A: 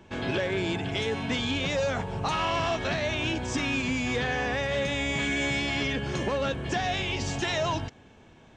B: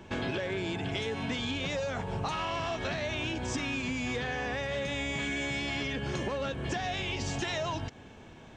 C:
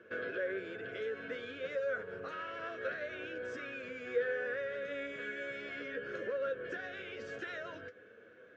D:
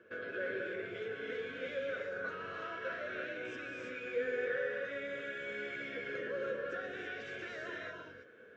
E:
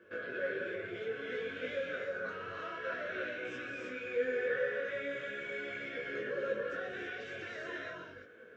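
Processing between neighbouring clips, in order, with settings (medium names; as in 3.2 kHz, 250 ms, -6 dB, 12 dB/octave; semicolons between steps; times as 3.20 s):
compression 6:1, threshold -34 dBFS, peak gain reduction 10 dB; trim +3.5 dB
two resonant band-passes 860 Hz, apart 1.6 oct; flange 1.1 Hz, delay 8.7 ms, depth 2.2 ms, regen +49%; trim +8.5 dB
gated-style reverb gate 360 ms rising, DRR -1.5 dB; trim -3.5 dB
detune thickener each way 21 cents; trim +5 dB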